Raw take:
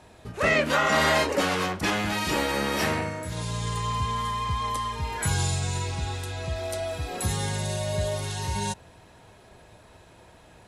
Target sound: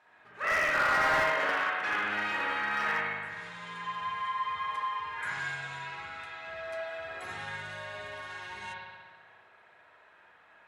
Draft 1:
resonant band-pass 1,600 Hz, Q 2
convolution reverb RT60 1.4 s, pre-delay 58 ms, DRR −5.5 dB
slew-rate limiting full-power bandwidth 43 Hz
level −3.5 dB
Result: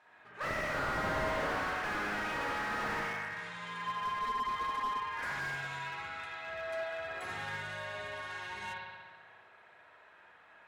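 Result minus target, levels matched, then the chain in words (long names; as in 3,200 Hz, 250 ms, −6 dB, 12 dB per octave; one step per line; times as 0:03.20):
slew-rate limiting: distortion +11 dB
resonant band-pass 1,600 Hz, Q 2
convolution reverb RT60 1.4 s, pre-delay 58 ms, DRR −5.5 dB
slew-rate limiting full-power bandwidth 157 Hz
level −3.5 dB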